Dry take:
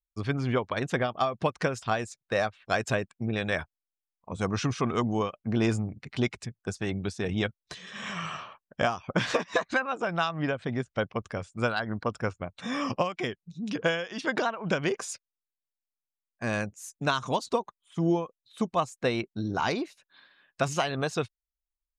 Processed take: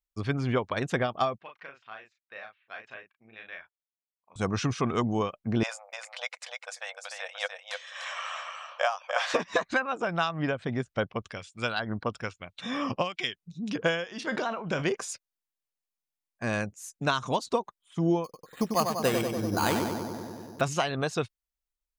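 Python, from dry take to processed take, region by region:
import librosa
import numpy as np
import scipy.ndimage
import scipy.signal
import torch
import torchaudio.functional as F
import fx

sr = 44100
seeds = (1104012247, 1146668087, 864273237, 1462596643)

y = fx.chain(x, sr, fx.lowpass(hz=2600.0, slope=24),
    fx.differentiator(),
    fx.doubler(ms=36.0, db=-4.5), at=(1.38, 4.36))
y = fx.chain(y, sr, fx.brickwall_highpass(low_hz=490.0),
    fx.echo_single(ms=298, db=-5.0), at=(5.63, 9.34))
y = fx.chain(y, sr, fx.peak_eq(hz=3400.0, db=9.0, octaves=1.3),
    fx.harmonic_tremolo(hz=1.1, depth_pct=70, crossover_hz=1600.0), at=(11.03, 13.35))
y = fx.chain(y, sr, fx.comb_fb(f0_hz=76.0, decay_s=0.25, harmonics='all', damping=0.0, mix_pct=50),
    fx.sustainer(db_per_s=63.0), at=(14.04, 14.85))
y = fx.chain(y, sr, fx.echo_filtered(ms=96, feedback_pct=80, hz=2100.0, wet_db=-5.0),
    fx.resample_bad(factor=8, down='none', up='hold'), at=(18.24, 20.61))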